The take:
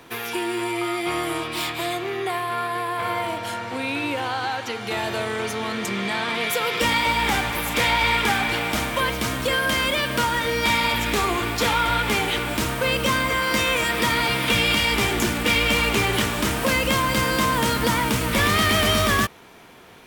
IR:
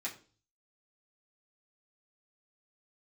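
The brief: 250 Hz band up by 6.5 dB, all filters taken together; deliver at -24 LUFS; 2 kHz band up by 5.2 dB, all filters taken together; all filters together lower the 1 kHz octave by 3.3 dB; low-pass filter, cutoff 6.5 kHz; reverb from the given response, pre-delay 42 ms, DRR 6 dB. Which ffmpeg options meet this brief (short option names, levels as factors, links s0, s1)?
-filter_complex "[0:a]lowpass=6500,equalizer=f=250:t=o:g=8.5,equalizer=f=1000:t=o:g=-7,equalizer=f=2000:t=o:g=8,asplit=2[s0][s1];[1:a]atrim=start_sample=2205,adelay=42[s2];[s1][s2]afir=irnorm=-1:irlink=0,volume=0.422[s3];[s0][s3]amix=inputs=2:normalize=0,volume=0.473"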